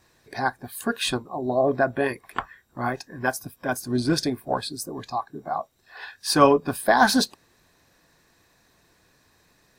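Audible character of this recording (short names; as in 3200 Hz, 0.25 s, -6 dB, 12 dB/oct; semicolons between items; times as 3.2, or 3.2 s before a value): noise floor -63 dBFS; spectral tilt -4.0 dB/oct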